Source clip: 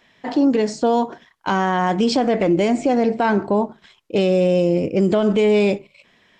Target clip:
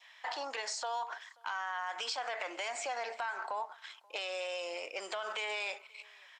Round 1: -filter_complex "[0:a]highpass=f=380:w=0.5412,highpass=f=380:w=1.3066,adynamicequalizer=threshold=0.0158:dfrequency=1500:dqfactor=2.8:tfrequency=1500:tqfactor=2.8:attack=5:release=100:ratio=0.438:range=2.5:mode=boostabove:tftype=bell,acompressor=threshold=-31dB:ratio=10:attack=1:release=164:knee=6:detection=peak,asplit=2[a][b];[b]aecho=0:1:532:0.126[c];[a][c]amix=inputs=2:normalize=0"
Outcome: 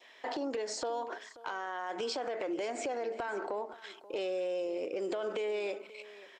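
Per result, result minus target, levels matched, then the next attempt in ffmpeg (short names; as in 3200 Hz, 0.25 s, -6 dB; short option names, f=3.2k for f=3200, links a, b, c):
500 Hz band +6.0 dB; echo-to-direct +9 dB
-filter_complex "[0:a]highpass=f=850:w=0.5412,highpass=f=850:w=1.3066,adynamicequalizer=threshold=0.0158:dfrequency=1500:dqfactor=2.8:tfrequency=1500:tqfactor=2.8:attack=5:release=100:ratio=0.438:range=2.5:mode=boostabove:tftype=bell,acompressor=threshold=-31dB:ratio=10:attack=1:release=164:knee=6:detection=peak,asplit=2[a][b];[b]aecho=0:1:532:0.126[c];[a][c]amix=inputs=2:normalize=0"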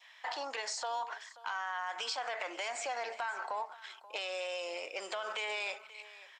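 echo-to-direct +9 dB
-filter_complex "[0:a]highpass=f=850:w=0.5412,highpass=f=850:w=1.3066,adynamicequalizer=threshold=0.0158:dfrequency=1500:dqfactor=2.8:tfrequency=1500:tqfactor=2.8:attack=5:release=100:ratio=0.438:range=2.5:mode=boostabove:tftype=bell,acompressor=threshold=-31dB:ratio=10:attack=1:release=164:knee=6:detection=peak,asplit=2[a][b];[b]aecho=0:1:532:0.0447[c];[a][c]amix=inputs=2:normalize=0"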